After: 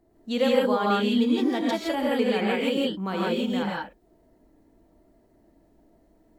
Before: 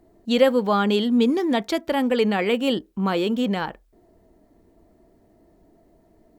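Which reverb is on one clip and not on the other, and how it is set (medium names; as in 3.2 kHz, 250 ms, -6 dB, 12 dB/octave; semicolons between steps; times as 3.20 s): gated-style reverb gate 190 ms rising, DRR -4 dB; trim -8 dB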